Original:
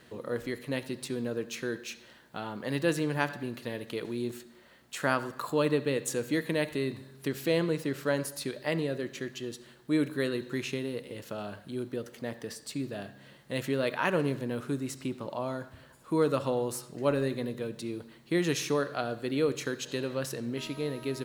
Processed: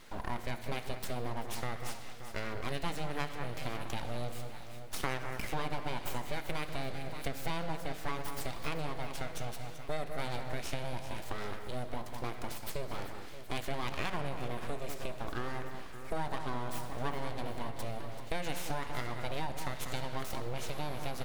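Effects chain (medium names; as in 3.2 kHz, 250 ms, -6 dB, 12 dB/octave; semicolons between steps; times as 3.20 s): full-wave rectifier; echo whose repeats swap between lows and highs 192 ms, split 2.2 kHz, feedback 68%, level -10 dB; reverberation RT60 1.2 s, pre-delay 8 ms, DRR 14.5 dB; compression 4:1, threshold -34 dBFS, peak gain reduction 12 dB; trim +3.5 dB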